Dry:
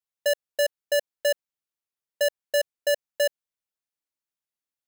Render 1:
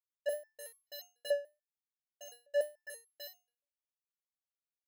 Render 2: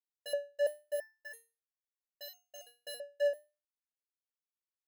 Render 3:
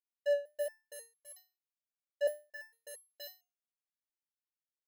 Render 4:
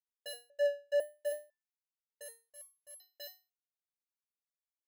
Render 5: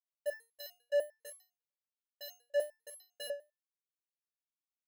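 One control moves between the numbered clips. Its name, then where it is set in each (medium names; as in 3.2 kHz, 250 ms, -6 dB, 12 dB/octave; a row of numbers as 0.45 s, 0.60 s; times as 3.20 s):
resonator arpeggio, rate: 6.9 Hz, 3 Hz, 4.4 Hz, 2 Hz, 10 Hz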